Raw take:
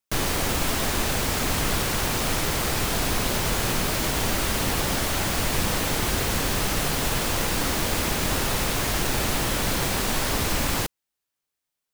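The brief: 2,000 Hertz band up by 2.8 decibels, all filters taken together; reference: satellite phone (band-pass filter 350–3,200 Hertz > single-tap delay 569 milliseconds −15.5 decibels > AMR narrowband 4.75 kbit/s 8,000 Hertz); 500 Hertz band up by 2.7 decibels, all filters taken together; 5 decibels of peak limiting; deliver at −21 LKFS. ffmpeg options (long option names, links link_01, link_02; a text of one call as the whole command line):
ffmpeg -i in.wav -af "equalizer=frequency=500:width_type=o:gain=4.5,equalizer=frequency=2000:width_type=o:gain=4,alimiter=limit=-15dB:level=0:latency=1,highpass=350,lowpass=3200,aecho=1:1:569:0.168,volume=13dB" -ar 8000 -c:a libopencore_amrnb -b:a 4750 out.amr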